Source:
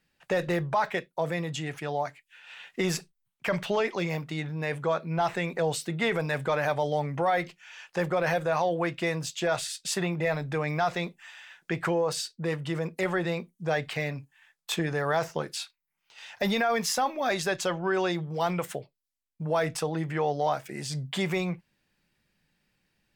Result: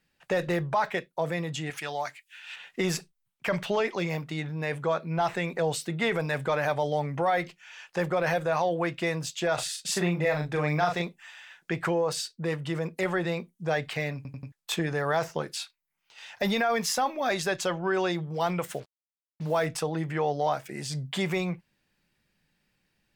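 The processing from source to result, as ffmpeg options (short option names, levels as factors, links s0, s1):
-filter_complex "[0:a]asettb=1/sr,asplit=3[s0][s1][s2];[s0]atrim=end=1.704[s3];[s1]atrim=start=1.7:end=2.56,asetpts=PTS-STARTPTS,afade=t=in:d=0.004:c=qsin,afade=t=out:st=0.856:d=0.004:c=qsin,tiltshelf=f=970:g=-8[s4];[s2]atrim=start=2.556[s5];[s3][s4]acrossfade=d=0.004:c1=hsin:c2=qsin[s6];[s6][s5]acrossfade=d=0.004:c1=qsin:c2=hsin,asettb=1/sr,asplit=3[s7][s8][s9];[s7]atrim=end=9.544[s10];[s8]atrim=start=9.54:end=11.02,asetpts=PTS-STARTPTS,afade=t=in:d=0.004:c=qsin,afade=t=out:st=1.476:d=0.004:c=qsin,asplit=2[s11][s12];[s12]adelay=40,volume=0.596[s13];[s11][s13]amix=inputs=2:normalize=0,atrim=end_sample=65268[s14];[s9]atrim=start=11.016[s15];[s10][s14]acrossfade=d=0.004:c1=hsin:c2=qsin[s16];[s16][s15]acrossfade=d=0.004:c1=qsin:c2=hsin,asettb=1/sr,asplit=3[s17][s18][s19];[s17]atrim=end=18.664[s20];[s18]atrim=start=18.66:end=19.66,asetpts=PTS-STARTPTS,afade=t=in:d=0.004:c=qsin,afade=t=out:st=0.996:d=0.004:c=qsin,acrusher=bits=7:mix=0:aa=0.5[s21];[s19]atrim=start=19.656[s22];[s20][s21]acrossfade=d=0.004:c1=hsin:c2=qsin[s23];[s23][s22]acrossfade=d=0.004:c1=qsin:c2=hsin,asplit=5[s24][s25][s26][s27][s28];[s24]atrim=end=14.252[s29];[s25]atrim=start=14.158:end=14.252[s30];[s26]atrim=start=14.158:end=14.252[s31];[s27]atrim=start=14.158:end=14.252[s32];[s28]atrim=start=14.518[s33];[s29][s30]acrossfade=d=0.004:c1=hsin:c2=hsin[s34];[s34][s31]acrossfade=d=0.004:c1=hsin:c2=hsin[s35];[s35][s32]acrossfade=d=0.004:c1=hsin:c2=hsin[s36];[s36][s33]acrossfade=d=0.004:c1=hsin:c2=hsin"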